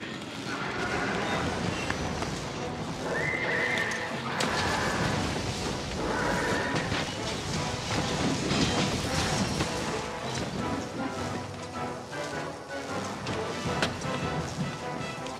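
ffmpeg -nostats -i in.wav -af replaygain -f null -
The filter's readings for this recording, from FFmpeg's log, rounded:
track_gain = +11.5 dB
track_peak = 0.172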